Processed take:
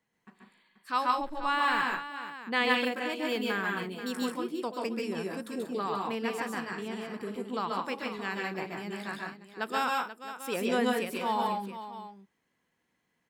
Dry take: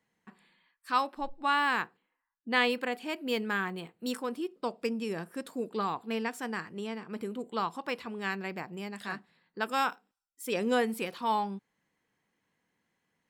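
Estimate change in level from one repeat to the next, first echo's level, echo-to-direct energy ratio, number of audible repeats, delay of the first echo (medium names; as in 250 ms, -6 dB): no regular repeats, -3.0 dB, 1.0 dB, 4, 132 ms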